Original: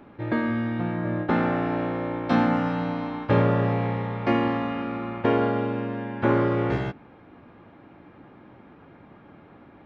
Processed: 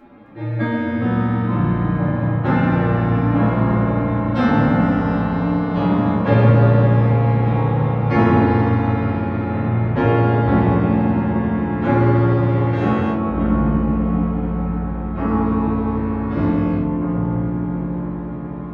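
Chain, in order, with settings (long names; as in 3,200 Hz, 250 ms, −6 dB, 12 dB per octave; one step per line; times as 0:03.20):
phase-vocoder stretch with locked phases 1.9×
delay with pitch and tempo change per echo 263 ms, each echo −4 semitones, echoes 3
rectangular room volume 360 cubic metres, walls furnished, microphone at 2.2 metres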